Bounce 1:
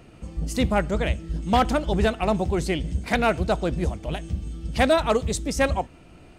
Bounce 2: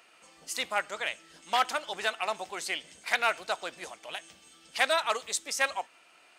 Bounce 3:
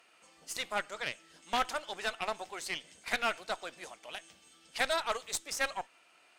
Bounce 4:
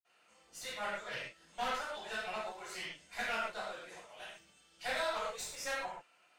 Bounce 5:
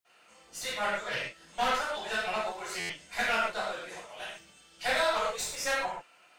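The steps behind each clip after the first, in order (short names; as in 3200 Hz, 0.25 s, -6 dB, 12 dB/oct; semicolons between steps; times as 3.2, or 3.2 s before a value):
HPF 1100 Hz 12 dB/oct
tube stage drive 20 dB, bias 0.75
reverb, pre-delay 46 ms; gain +9 dB
stuck buffer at 2.79, samples 512, times 8; gain +8 dB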